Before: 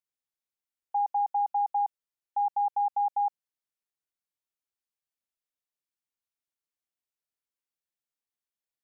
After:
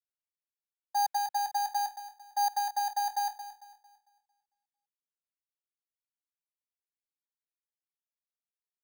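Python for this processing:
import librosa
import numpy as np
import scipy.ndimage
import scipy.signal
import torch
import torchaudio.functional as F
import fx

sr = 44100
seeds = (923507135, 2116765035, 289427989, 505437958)

p1 = fx.lower_of_two(x, sr, delay_ms=1.3)
p2 = scipy.signal.sosfilt(scipy.signal.butter(4, 610.0, 'highpass', fs=sr, output='sos'), p1)
p3 = fx.tilt_eq(p2, sr, slope=3.0)
p4 = 10.0 ** (-37.5 / 20.0) * np.tanh(p3 / 10.0 ** (-37.5 / 20.0))
p5 = p3 + (p4 * 10.0 ** (-7.0 / 20.0))
p6 = fx.air_absorb(p5, sr, metres=310.0)
p7 = p6 + fx.echo_feedback(p6, sr, ms=225, feedback_pct=56, wet_db=-8.0, dry=0)
p8 = np.repeat(scipy.signal.resample_poly(p7, 1, 8), 8)[:len(p7)]
y = fx.band_widen(p8, sr, depth_pct=70)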